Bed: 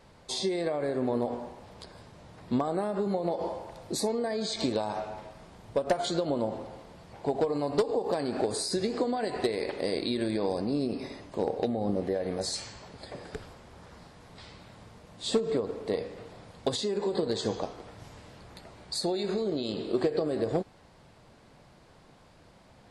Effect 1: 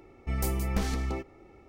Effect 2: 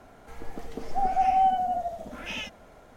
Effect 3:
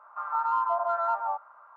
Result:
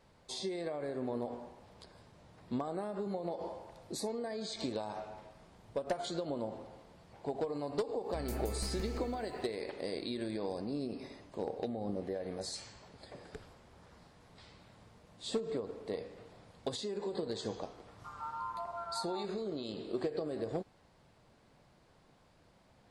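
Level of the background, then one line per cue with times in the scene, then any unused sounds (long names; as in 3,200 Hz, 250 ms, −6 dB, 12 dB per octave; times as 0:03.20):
bed −8.5 dB
0:07.86: mix in 1 −13 dB + feedback echo at a low word length 170 ms, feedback 35%, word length 9 bits, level −4.5 dB
0:17.88: mix in 3 −14 dB
not used: 2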